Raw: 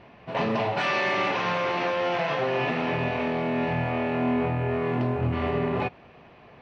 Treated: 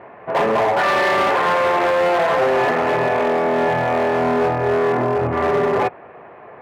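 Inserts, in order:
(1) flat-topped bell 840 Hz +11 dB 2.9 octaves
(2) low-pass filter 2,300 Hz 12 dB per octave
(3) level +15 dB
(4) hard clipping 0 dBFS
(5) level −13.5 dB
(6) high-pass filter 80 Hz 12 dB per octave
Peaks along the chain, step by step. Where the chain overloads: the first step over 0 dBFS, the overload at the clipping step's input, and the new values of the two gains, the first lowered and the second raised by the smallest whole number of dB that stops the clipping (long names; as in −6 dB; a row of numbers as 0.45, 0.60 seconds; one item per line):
−5.0, −5.0, +10.0, 0.0, −13.5, −10.5 dBFS
step 3, 10.0 dB
step 3 +5 dB, step 5 −3.5 dB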